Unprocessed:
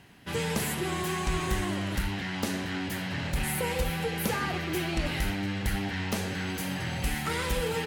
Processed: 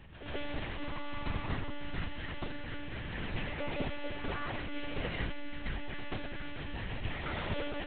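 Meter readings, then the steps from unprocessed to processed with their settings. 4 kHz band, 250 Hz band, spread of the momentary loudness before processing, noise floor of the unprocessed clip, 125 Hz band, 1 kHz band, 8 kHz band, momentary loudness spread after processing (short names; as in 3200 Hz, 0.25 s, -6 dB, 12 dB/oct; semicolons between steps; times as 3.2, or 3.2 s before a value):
-9.0 dB, -9.5 dB, 3 LU, -35 dBFS, -8.5 dB, -8.5 dB, under -40 dB, 5 LU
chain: hum 50 Hz, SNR 17 dB; monotone LPC vocoder at 8 kHz 290 Hz; reverse echo 0.133 s -10 dB; gain -6.5 dB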